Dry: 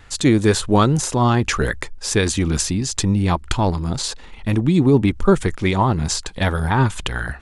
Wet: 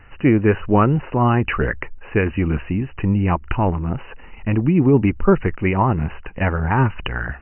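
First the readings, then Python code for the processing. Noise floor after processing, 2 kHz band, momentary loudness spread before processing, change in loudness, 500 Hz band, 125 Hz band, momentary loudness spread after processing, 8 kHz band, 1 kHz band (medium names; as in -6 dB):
-40 dBFS, 0.0 dB, 8 LU, -0.5 dB, 0.0 dB, 0.0 dB, 9 LU, under -40 dB, 0.0 dB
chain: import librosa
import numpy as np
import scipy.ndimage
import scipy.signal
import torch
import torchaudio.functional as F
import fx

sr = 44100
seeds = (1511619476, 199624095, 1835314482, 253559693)

y = fx.brickwall_lowpass(x, sr, high_hz=3000.0)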